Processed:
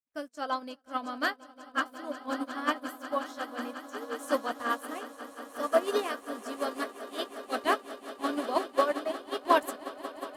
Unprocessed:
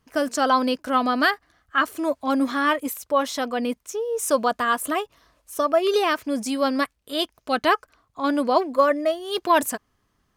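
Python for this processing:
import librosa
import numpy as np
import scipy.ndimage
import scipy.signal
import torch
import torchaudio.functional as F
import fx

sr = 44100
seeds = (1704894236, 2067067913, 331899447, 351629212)

y = fx.doubler(x, sr, ms=17.0, db=-11)
y = fx.echo_swell(y, sr, ms=180, loudest=8, wet_db=-11.5)
y = fx.upward_expand(y, sr, threshold_db=-40.0, expansion=2.5)
y = F.gain(torch.from_numpy(y), -5.0).numpy()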